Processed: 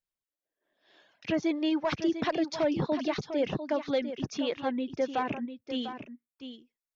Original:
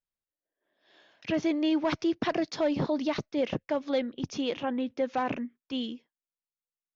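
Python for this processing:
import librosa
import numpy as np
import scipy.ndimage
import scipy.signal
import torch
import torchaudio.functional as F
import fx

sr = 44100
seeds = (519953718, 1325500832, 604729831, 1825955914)

y = fx.dereverb_blind(x, sr, rt60_s=0.89)
y = y + 10.0 ** (-10.0 / 20.0) * np.pad(y, (int(698 * sr / 1000.0), 0))[:len(y)]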